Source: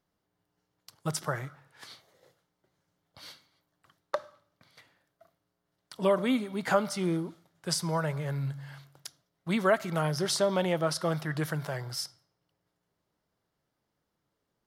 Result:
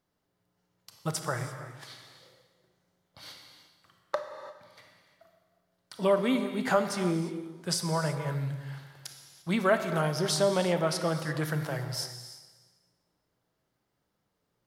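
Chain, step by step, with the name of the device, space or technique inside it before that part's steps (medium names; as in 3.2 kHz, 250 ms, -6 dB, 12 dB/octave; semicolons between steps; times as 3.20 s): compressed reverb return (on a send at -3.5 dB: reverberation RT60 1.2 s, pre-delay 27 ms + compression, threshold -41 dBFS, peak gain reduction 19 dB); on the sum: gated-style reverb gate 370 ms flat, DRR 8 dB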